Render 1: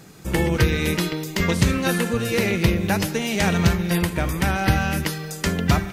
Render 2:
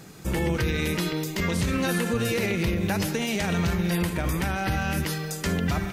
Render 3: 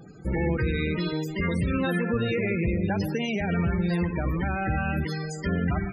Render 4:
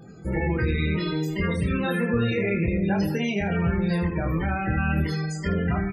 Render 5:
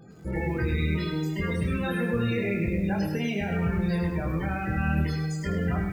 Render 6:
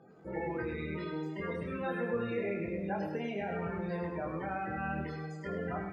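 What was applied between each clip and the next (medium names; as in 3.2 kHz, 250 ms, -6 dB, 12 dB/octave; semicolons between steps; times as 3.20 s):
peak limiter -16.5 dBFS, peak gain reduction 10.5 dB
loudest bins only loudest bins 32
early reflections 25 ms -3.5 dB, 76 ms -11.5 dB
bit-crushed delay 103 ms, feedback 35%, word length 8-bit, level -8 dB; trim -4 dB
band-pass filter 720 Hz, Q 0.86; trim -1.5 dB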